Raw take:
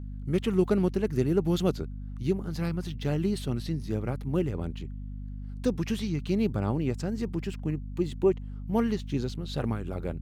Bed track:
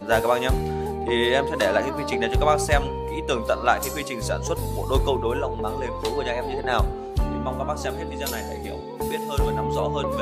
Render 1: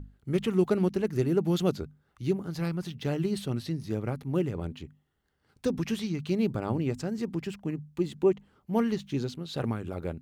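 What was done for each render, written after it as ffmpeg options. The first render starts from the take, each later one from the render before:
-af "bandreject=f=50:t=h:w=6,bandreject=f=100:t=h:w=6,bandreject=f=150:t=h:w=6,bandreject=f=200:t=h:w=6,bandreject=f=250:t=h:w=6"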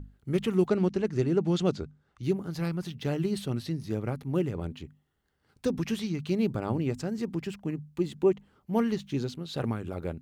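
-filter_complex "[0:a]asettb=1/sr,asplit=3[a][b][c];[a]atrim=end=0.674[d];[b]atrim=start=0.67:end=2.23,asetpts=PTS-STARTPTS,afade=t=in:d=0.004:c=qsin,afade=t=out:st=1.556:d=0.004:c=qsin,lowpass=f=8.1k:w=0.5412,lowpass=f=8.1k:w=1.3066[e];[c]atrim=start=2.226[f];[d][e]acrossfade=d=0.004:c1=hsin:c2=qsin[g];[g][f]acrossfade=d=0.004:c1=qsin:c2=hsin"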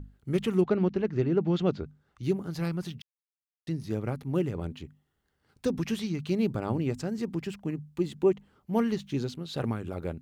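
-filter_complex "[0:a]asplit=3[a][b][c];[a]afade=t=out:st=0.6:d=0.02[d];[b]lowpass=3.4k,afade=t=in:st=0.6:d=0.02,afade=t=out:st=1.84:d=0.02[e];[c]afade=t=in:st=1.84:d=0.02[f];[d][e][f]amix=inputs=3:normalize=0,asplit=3[g][h][i];[g]atrim=end=3.02,asetpts=PTS-STARTPTS,afade=t=out:st=3.016:d=0.004:c=hsin[j];[h]atrim=start=3.02:end=3.67,asetpts=PTS-STARTPTS,volume=0[k];[i]atrim=start=3.67,asetpts=PTS-STARTPTS,afade=t=in:d=0.004:c=hsin[l];[j][k][l]concat=n=3:v=0:a=1"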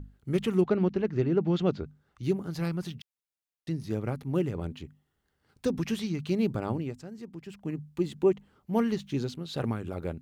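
-filter_complex "[0:a]asplit=3[a][b][c];[a]atrim=end=6.98,asetpts=PTS-STARTPTS,afade=t=out:st=6.65:d=0.33:silence=0.298538[d];[b]atrim=start=6.98:end=7.44,asetpts=PTS-STARTPTS,volume=-10.5dB[e];[c]atrim=start=7.44,asetpts=PTS-STARTPTS,afade=t=in:d=0.33:silence=0.298538[f];[d][e][f]concat=n=3:v=0:a=1"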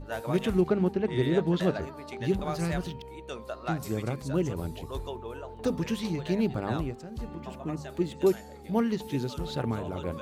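-filter_complex "[1:a]volume=-15dB[a];[0:a][a]amix=inputs=2:normalize=0"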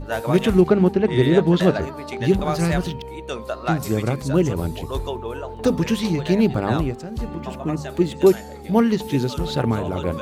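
-af "volume=9.5dB"

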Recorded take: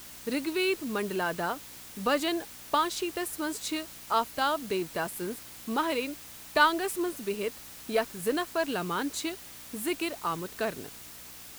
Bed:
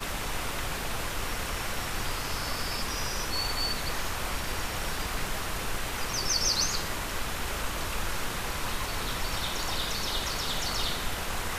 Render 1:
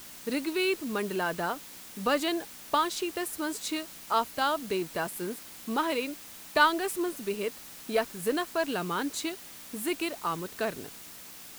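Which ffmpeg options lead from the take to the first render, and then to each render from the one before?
-af "bandreject=f=60:t=h:w=4,bandreject=f=120:t=h:w=4"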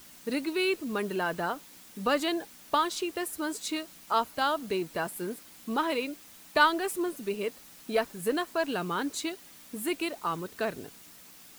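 -af "afftdn=nr=6:nf=-47"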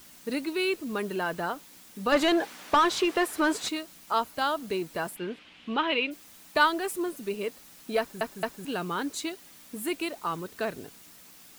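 -filter_complex "[0:a]asettb=1/sr,asplit=3[a][b][c];[a]atrim=end=2.124[d];[b]atrim=start=2.12:end=3.69,asetpts=PTS-STARTPTS,afade=t=in:d=0.004:c=qsin,afade=t=out:st=1.566:d=0.004:c=qsin,asplit=2[e][f];[f]highpass=f=720:p=1,volume=22dB,asoftclip=type=tanh:threshold=-12dB[g];[e][g]amix=inputs=2:normalize=0,lowpass=f=1.7k:p=1,volume=-6dB[h];[c]atrim=start=3.686[i];[d][h]acrossfade=d=0.004:c1=hsin:c2=qsin[j];[j][i]acrossfade=d=0.004:c1=qsin:c2=hsin,asplit=3[k][l][m];[k]afade=t=out:st=5.15:d=0.02[n];[l]lowpass=f=2.9k:t=q:w=3.2,afade=t=in:st=5.15:d=0.02,afade=t=out:st=6.1:d=0.02[o];[m]afade=t=in:st=6.1:d=0.02[p];[n][o][p]amix=inputs=3:normalize=0,asplit=4[q][r][s][t];[q]atrim=end=8.212[u];[r]atrim=start=7.988:end=8.212[v];[s]atrim=start=7.988:end=8.212[w];[t]atrim=start=8.648[x];[u][v]acrossfade=d=0.004:c1=hsin:c2=hsin[y];[y][w]acrossfade=d=0.004:c1=hsin:c2=hsin[z];[z][x]acrossfade=d=0.004:c1=hsin:c2=hsin"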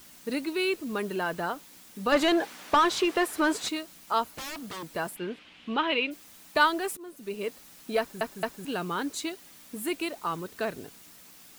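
-filter_complex "[0:a]asettb=1/sr,asplit=3[a][b][c];[a]atrim=end=4.274[d];[b]atrim=start=4.27:end=4.89,asetpts=PTS-STARTPTS,afade=t=in:d=0.004:c=qsin,afade=t=out:st=0.616:d=0.004:c=qsin,aeval=exprs='0.0237*(abs(mod(val(0)/0.0237+3,4)-2)-1)':c=same[e];[c]atrim=start=4.886[f];[d][e]acrossfade=d=0.004:c1=hsin:c2=qsin[g];[g][f]acrossfade=d=0.004:c1=qsin:c2=hsin,asplit=2[h][i];[h]atrim=end=6.97,asetpts=PTS-STARTPTS,afade=t=out:st=6.966:d=0.004:c=hsin:silence=0.1[j];[i]atrim=start=6.97,asetpts=PTS-STARTPTS,afade=t=in:d=0.51:silence=0.1[k];[j][k]concat=n=2:v=0:a=1"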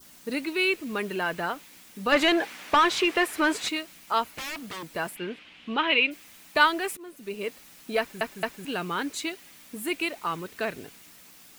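-af "adynamicequalizer=threshold=0.00562:dfrequency=2300:dqfactor=1.4:tfrequency=2300:tqfactor=1.4:attack=5:release=100:ratio=0.375:range=4:mode=boostabove:tftype=bell"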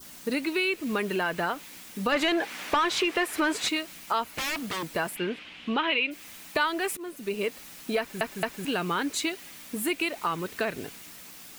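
-filter_complex "[0:a]asplit=2[a][b];[b]alimiter=limit=-18.5dB:level=0:latency=1,volume=-1.5dB[c];[a][c]amix=inputs=2:normalize=0,acompressor=threshold=-26dB:ratio=2.5"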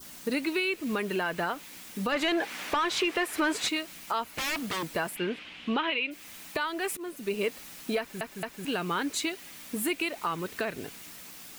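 -af "alimiter=limit=-19dB:level=0:latency=1:release=430"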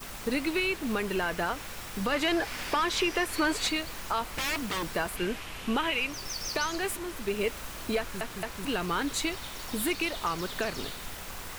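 -filter_complex "[1:a]volume=-9.5dB[a];[0:a][a]amix=inputs=2:normalize=0"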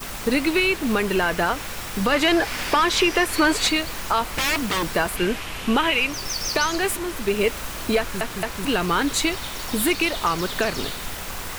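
-af "volume=8.5dB"

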